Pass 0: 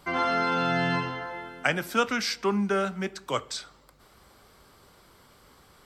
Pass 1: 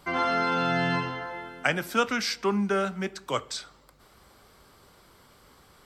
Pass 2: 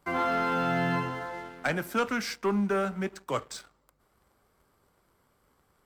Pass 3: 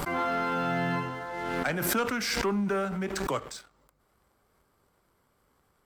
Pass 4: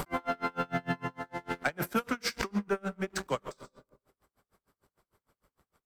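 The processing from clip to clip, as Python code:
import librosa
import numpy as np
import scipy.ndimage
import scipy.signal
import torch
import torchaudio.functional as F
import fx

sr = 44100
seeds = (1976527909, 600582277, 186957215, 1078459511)

y1 = x
y2 = fx.peak_eq(y1, sr, hz=4100.0, db=-8.5, octaves=1.5)
y2 = fx.leveller(y2, sr, passes=2)
y2 = y2 * librosa.db_to_amplitude(-7.5)
y3 = fx.pre_swell(y2, sr, db_per_s=26.0)
y3 = y3 * librosa.db_to_amplitude(-1.5)
y4 = fx.rev_freeverb(y3, sr, rt60_s=1.1, hf_ratio=0.3, predelay_ms=95, drr_db=12.5)
y4 = y4 * 10.0 ** (-34 * (0.5 - 0.5 * np.cos(2.0 * np.pi * 6.6 * np.arange(len(y4)) / sr)) / 20.0)
y4 = y4 * librosa.db_to_amplitude(2.0)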